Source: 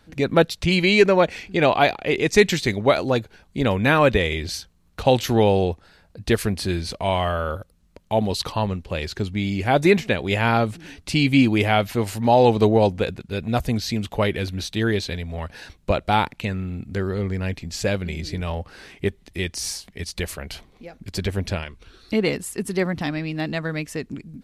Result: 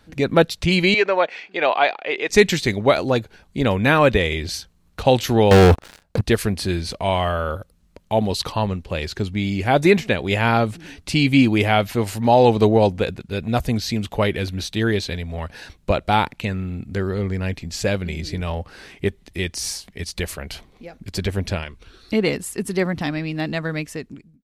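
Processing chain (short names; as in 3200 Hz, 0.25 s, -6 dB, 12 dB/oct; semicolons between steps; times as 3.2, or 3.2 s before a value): ending faded out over 0.64 s; 0.94–2.3 BPF 550–3600 Hz; 5.51–6.21 sample leveller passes 5; gain +1.5 dB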